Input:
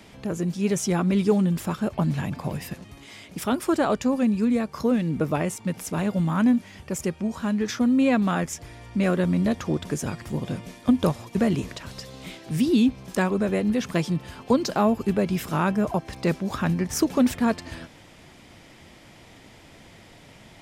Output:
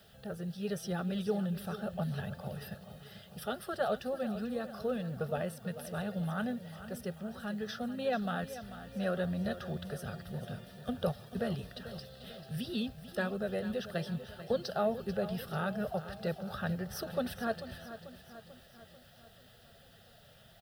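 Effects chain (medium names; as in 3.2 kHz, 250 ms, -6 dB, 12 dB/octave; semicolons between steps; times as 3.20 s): coarse spectral quantiser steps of 15 dB; bass shelf 62 Hz -6.5 dB; static phaser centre 1.5 kHz, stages 8; added noise blue -63 dBFS; on a send: feedback delay 441 ms, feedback 55%, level -13 dB; on the sum: trim -6.5 dB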